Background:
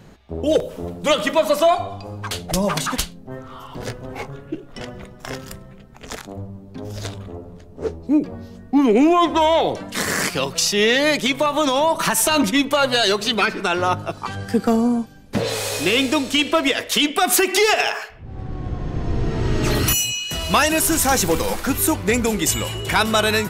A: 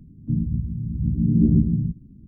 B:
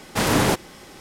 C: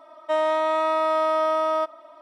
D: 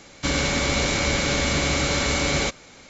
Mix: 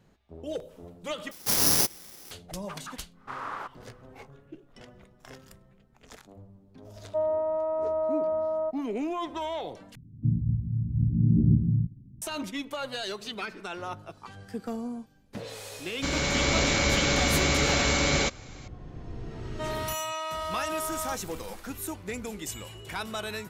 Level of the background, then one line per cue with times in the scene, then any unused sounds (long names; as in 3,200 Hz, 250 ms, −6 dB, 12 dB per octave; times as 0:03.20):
background −17 dB
0:01.31: overwrite with B −12.5 dB + bad sample-rate conversion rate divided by 8×, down none, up zero stuff
0:03.12: mix in B −5.5 dB, fades 0.10 s + resonant band-pass 1,200 Hz, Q 4.4
0:06.85: mix in C −11 dB + low-pass with resonance 680 Hz, resonance Q 2.4
0:09.95: overwrite with A −8 dB + parametric band 120 Hz +11.5 dB 0.51 octaves
0:15.79: mix in D −7 dB + automatic gain control gain up to 5.5 dB
0:19.30: mix in C −11.5 dB + spectral tilt +3.5 dB per octave